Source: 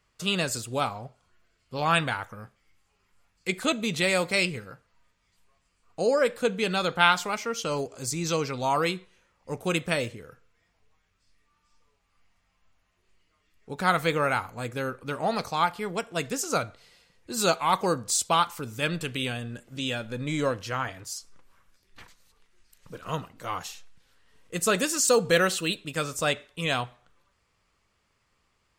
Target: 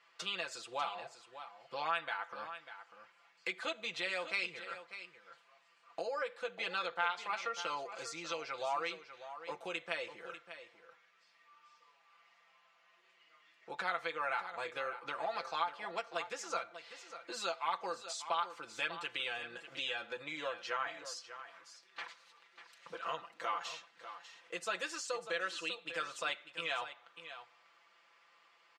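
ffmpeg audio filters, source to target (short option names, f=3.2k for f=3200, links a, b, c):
-filter_complex "[0:a]aecho=1:1:5.9:0.8,acompressor=threshold=-40dB:ratio=4,highpass=680,lowpass=3.8k,asplit=2[a][b];[b]aecho=0:1:595:0.251[c];[a][c]amix=inputs=2:normalize=0,volume=5.5dB"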